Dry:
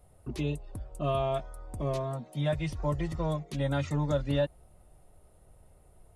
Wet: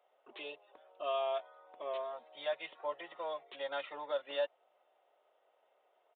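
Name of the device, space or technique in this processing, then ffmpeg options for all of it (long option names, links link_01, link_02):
musical greeting card: -af "aresample=8000,aresample=44100,highpass=frequency=520:width=0.5412,highpass=frequency=520:width=1.3066,equalizer=frequency=3100:width_type=o:width=0.38:gain=4,volume=-3.5dB"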